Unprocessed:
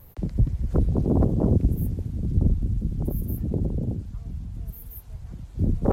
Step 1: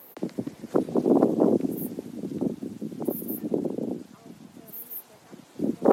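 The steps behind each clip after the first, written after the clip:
high-pass filter 260 Hz 24 dB per octave
level +6.5 dB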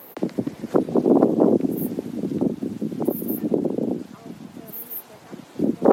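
parametric band 9,000 Hz −5 dB 1.9 octaves
in parallel at 0 dB: downward compressor, threshold −29 dBFS, peak gain reduction 15.5 dB
on the sum: level +2 dB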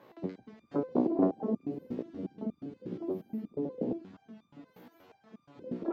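high-frequency loss of the air 190 metres
step-sequenced resonator 8.4 Hz 61–1,200 Hz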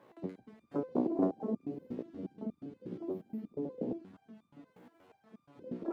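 running median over 9 samples
level −3.5 dB

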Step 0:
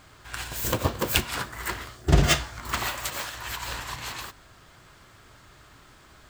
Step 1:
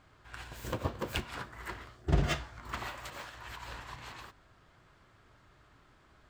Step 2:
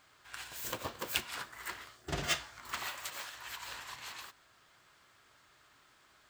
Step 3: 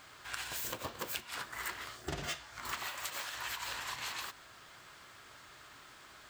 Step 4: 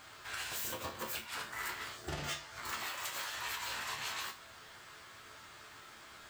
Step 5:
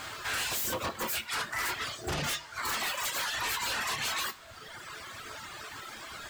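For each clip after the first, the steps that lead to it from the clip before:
low-pass filter 2,300 Hz 6 dB per octave; level −8.5 dB
spectral tilt +3.5 dB per octave; level −2 dB
downward compressor 10 to 1, threshold −46 dBFS, peak gain reduction 19 dB; level +9.5 dB
soft clipping −32.5 dBFS, distortion −15 dB; resonators tuned to a chord D2 minor, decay 0.27 s; level +12 dB
reverb reduction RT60 1.7 s; sine wavefolder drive 10 dB, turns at −28.5 dBFS; one half of a high-frequency compander encoder only

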